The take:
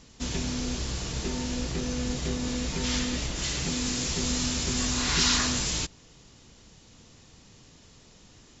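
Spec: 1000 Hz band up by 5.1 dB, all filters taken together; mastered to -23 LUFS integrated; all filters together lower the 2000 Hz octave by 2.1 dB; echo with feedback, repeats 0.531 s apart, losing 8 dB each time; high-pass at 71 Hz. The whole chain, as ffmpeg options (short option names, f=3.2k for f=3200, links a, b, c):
-af "highpass=71,equalizer=f=1k:t=o:g=7.5,equalizer=f=2k:t=o:g=-5,aecho=1:1:531|1062|1593|2124|2655:0.398|0.159|0.0637|0.0255|0.0102,volume=5dB"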